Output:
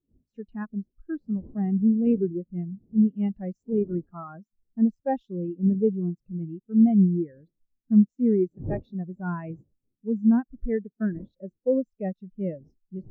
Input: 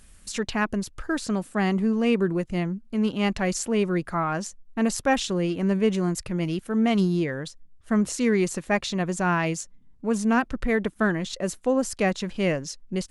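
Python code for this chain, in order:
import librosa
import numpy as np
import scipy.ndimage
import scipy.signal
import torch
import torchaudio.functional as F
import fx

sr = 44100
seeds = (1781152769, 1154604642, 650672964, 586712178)

y = fx.dead_time(x, sr, dead_ms=0.053)
y = fx.dmg_wind(y, sr, seeds[0], corner_hz=370.0, level_db=-36.0)
y = np.clip(y, -10.0 ** (-15.5 / 20.0), 10.0 ** (-15.5 / 20.0))
y = fx.spectral_expand(y, sr, expansion=2.5)
y = y * librosa.db_to_amplitude(6.5)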